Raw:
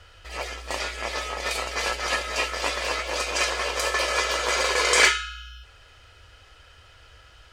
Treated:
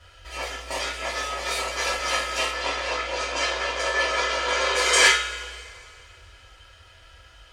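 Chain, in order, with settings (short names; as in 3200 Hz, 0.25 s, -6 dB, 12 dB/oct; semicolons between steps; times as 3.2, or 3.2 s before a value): 2.5–4.75 air absorption 83 m; two-slope reverb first 0.3 s, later 2.5 s, from -22 dB, DRR -5 dB; gain -5.5 dB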